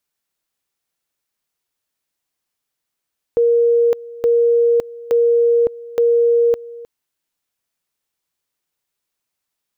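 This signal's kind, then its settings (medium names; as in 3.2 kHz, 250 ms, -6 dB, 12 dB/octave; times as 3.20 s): two-level tone 470 Hz -10.5 dBFS, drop 20 dB, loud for 0.56 s, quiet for 0.31 s, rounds 4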